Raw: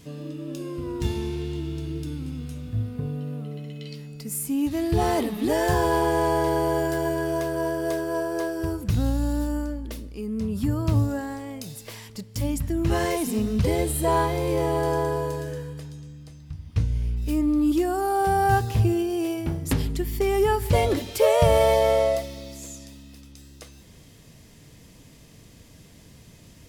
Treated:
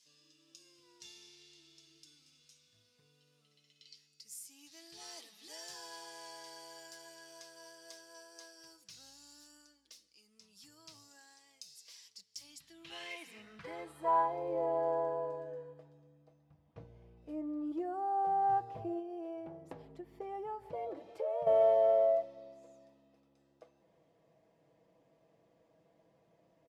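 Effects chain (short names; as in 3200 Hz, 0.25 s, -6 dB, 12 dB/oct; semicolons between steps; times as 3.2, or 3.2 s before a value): comb 6.1 ms, depth 48%; 18.99–21.47 compressor 6:1, threshold -24 dBFS, peak gain reduction 10.5 dB; band-pass sweep 5400 Hz -> 650 Hz, 12.39–14.5; gain -7 dB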